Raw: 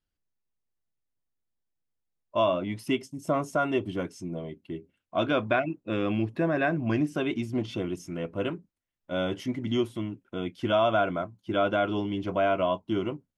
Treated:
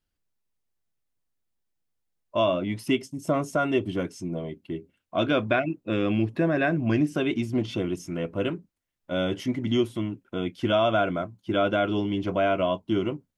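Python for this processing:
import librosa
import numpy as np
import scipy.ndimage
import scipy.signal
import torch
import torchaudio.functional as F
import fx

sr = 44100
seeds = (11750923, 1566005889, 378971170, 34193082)

y = fx.dynamic_eq(x, sr, hz=950.0, q=1.3, threshold_db=-39.0, ratio=4.0, max_db=-5)
y = y * librosa.db_to_amplitude(3.5)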